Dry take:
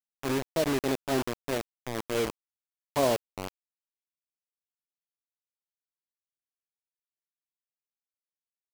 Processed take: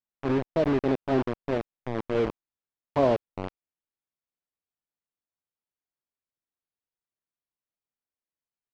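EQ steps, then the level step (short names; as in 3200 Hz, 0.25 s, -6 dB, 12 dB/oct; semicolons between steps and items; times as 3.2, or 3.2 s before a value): tape spacing loss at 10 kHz 45 dB; high shelf 4400 Hz +8.5 dB; +5.5 dB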